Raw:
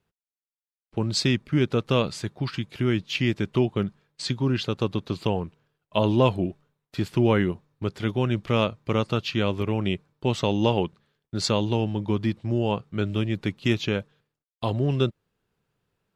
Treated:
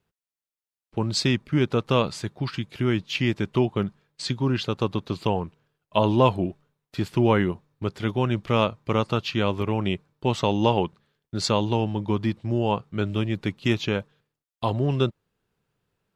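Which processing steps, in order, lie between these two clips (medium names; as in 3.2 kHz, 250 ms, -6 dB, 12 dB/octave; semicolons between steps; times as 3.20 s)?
dynamic bell 940 Hz, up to +5 dB, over -40 dBFS, Q 1.6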